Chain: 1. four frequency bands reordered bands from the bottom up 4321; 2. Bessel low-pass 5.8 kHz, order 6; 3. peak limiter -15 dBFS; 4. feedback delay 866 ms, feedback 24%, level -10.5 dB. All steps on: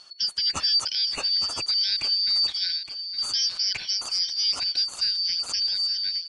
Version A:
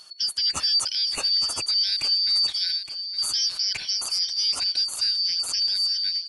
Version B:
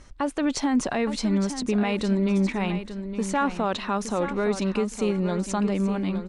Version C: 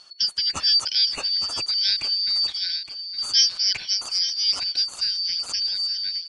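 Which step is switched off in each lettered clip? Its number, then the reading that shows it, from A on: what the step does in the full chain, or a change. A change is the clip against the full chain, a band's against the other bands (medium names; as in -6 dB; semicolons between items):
2, 8 kHz band +4.0 dB; 1, 4 kHz band -24.0 dB; 3, crest factor change +6.0 dB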